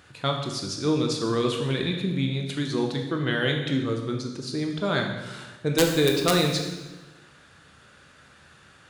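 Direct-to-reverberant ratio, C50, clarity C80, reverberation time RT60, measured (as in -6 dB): 2.0 dB, 5.0 dB, 7.0 dB, 1.2 s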